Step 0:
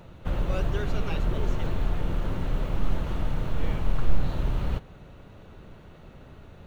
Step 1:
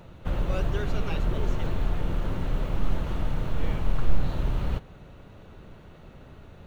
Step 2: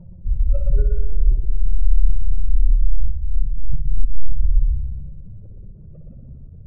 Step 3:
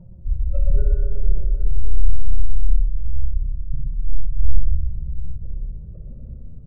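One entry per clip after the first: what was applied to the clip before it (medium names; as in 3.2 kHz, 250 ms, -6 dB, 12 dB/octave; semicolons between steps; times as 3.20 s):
no audible change
spectral contrast enhancement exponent 3.1; multi-head delay 60 ms, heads first and second, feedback 63%, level -7 dB; trim +8 dB
in parallel at -10 dB: hard clipper -12 dBFS, distortion -10 dB; on the sum: reverberation RT60 4.0 s, pre-delay 9 ms, DRR 1 dB; trim -4.5 dB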